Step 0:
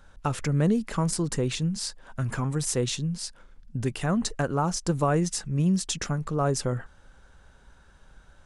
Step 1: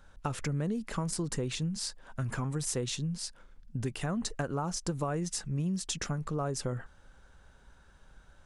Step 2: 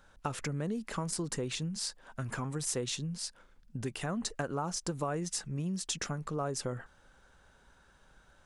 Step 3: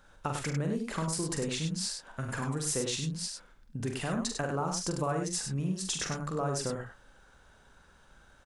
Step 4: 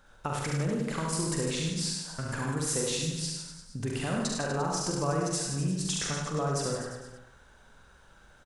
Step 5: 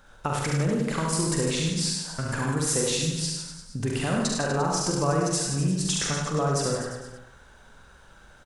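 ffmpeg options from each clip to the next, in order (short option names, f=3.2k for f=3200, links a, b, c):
-af "acompressor=threshold=-25dB:ratio=6,volume=-3.5dB"
-af "lowshelf=f=140:g=-8.5"
-af "aecho=1:1:44|72|99:0.531|0.211|0.501,volume=1dB"
-af "aecho=1:1:70|150.5|243.1|349.5|472:0.631|0.398|0.251|0.158|0.1"
-af "volume=5dB" -ar 48000 -c:a aac -b:a 128k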